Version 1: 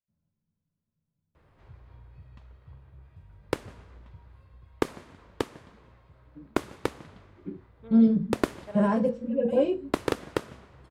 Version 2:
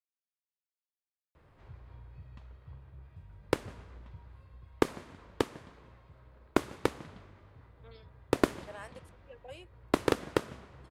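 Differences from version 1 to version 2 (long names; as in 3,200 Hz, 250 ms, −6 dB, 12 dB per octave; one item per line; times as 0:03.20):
speech: add Bessel high-pass filter 830 Hz, order 2
reverb: off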